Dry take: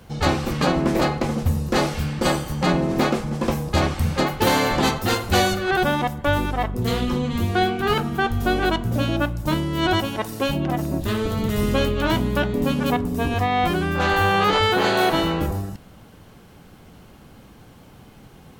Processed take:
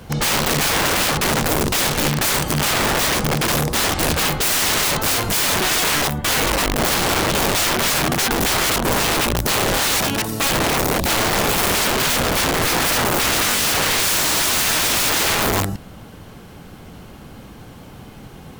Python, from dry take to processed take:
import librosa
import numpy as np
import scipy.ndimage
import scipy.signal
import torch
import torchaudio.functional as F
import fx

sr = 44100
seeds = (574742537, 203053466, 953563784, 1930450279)

y = fx.comb(x, sr, ms=7.0, depth=0.88, at=(12.64, 14.17))
y = (np.mod(10.0 ** (21.0 / 20.0) * y + 1.0, 2.0) - 1.0) / 10.0 ** (21.0 / 20.0)
y = y * librosa.db_to_amplitude(7.5)